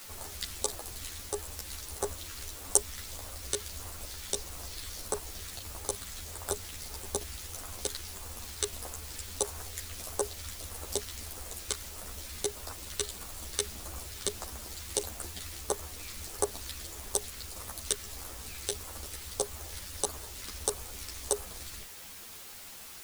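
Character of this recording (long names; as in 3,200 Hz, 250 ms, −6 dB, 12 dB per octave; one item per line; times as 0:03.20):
phaser sweep stages 2, 1.6 Hz, lowest notch 770–2,800 Hz
a quantiser's noise floor 8 bits, dither triangular
a shimmering, thickened sound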